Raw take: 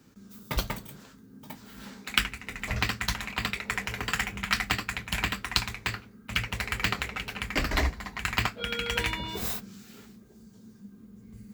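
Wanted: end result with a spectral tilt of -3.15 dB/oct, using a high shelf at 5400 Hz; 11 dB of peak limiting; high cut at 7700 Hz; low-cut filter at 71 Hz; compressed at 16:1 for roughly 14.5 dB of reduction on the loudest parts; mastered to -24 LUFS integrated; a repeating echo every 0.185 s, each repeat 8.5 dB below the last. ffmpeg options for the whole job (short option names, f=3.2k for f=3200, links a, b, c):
-af "highpass=71,lowpass=7.7k,highshelf=f=5.4k:g=7,acompressor=threshold=-34dB:ratio=16,alimiter=limit=-24dB:level=0:latency=1,aecho=1:1:185|370|555|740:0.376|0.143|0.0543|0.0206,volume=17dB"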